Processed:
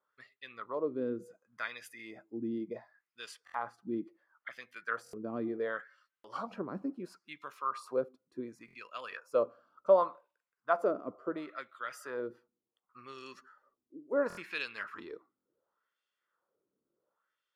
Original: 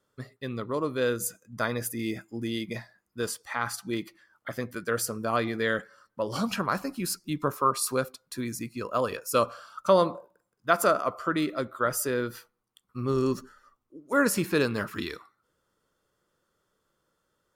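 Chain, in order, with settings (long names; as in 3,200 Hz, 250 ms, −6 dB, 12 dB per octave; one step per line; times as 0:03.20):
LFO wah 0.7 Hz 270–2,800 Hz, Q 2.2
buffer that repeats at 0:03.45/0:05.04/0:06.15/0:08.66/0:14.28/0:15.36, samples 1,024, times 3
level −1 dB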